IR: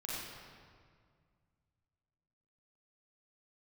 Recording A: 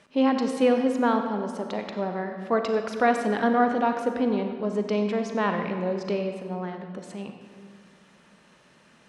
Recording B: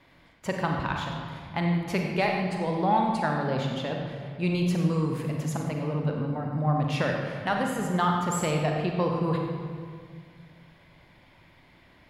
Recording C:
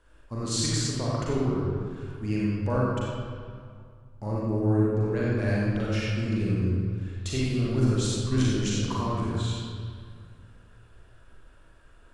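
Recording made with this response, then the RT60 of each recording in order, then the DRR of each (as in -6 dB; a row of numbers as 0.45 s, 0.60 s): C; 2.0 s, 2.0 s, 2.0 s; 5.0 dB, 1.0 dB, -6.5 dB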